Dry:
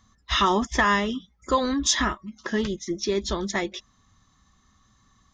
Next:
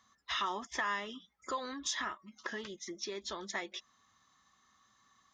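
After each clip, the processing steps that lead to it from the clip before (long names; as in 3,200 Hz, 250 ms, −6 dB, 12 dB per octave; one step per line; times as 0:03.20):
downward compressor 2.5 to 1, threshold −33 dBFS, peak gain reduction 11 dB
high-pass filter 1,500 Hz 6 dB per octave
high-shelf EQ 2,600 Hz −9.5 dB
level +3 dB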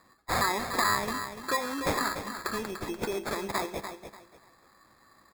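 decimation without filtering 15×
repeating echo 293 ms, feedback 26%, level −9 dB
convolution reverb RT60 0.55 s, pre-delay 29 ms, DRR 16 dB
level +8 dB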